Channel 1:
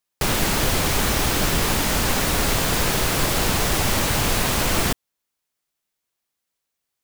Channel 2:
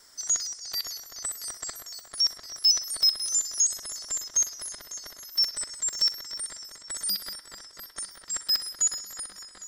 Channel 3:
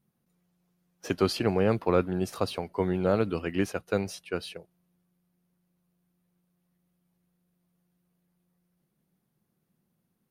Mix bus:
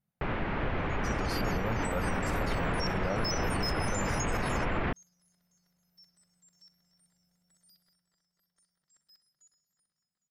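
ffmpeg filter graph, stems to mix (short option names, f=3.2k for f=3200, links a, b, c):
-filter_complex "[0:a]acontrast=68,lowpass=f=2.3k:w=0.5412,lowpass=f=2.3k:w=1.3066,volume=-15.5dB[a];[1:a]adelay=600,volume=-15dB[b];[2:a]aecho=1:1:1.4:0.66,volume=-10.5dB,afade=t=out:st=7.47:d=0.71:silence=0.251189,asplit=2[c][d];[d]apad=whole_len=453332[e];[b][e]sidechaingate=range=-28dB:threshold=-56dB:ratio=16:detection=peak[f];[a][f][c]amix=inputs=3:normalize=0,dynaudnorm=f=350:g=9:m=7.5dB,alimiter=limit=-22dB:level=0:latency=1:release=59"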